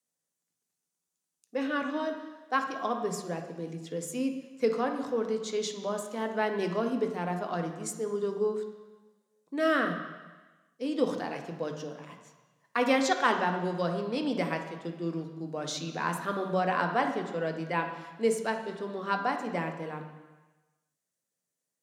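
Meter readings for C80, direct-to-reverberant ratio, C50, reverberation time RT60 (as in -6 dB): 9.0 dB, 4.0 dB, 7.0 dB, 1.2 s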